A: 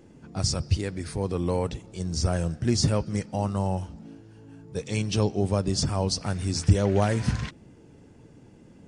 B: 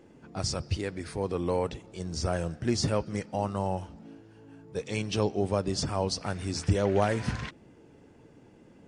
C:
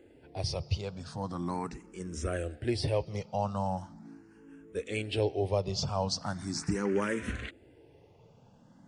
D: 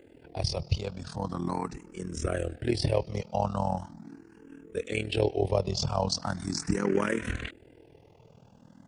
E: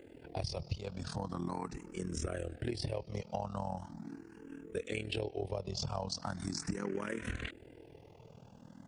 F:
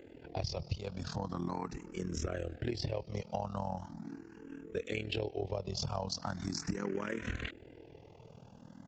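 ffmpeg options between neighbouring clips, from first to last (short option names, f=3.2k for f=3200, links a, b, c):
-af "bass=f=250:g=-7,treble=f=4k:g=-6"
-filter_complex "[0:a]asplit=2[a][b];[b]afreqshift=0.4[c];[a][c]amix=inputs=2:normalize=1"
-af "tremolo=f=40:d=0.824,volume=6.5dB"
-af "acompressor=threshold=-34dB:ratio=6"
-af "aresample=16000,aresample=44100,volume=1dB"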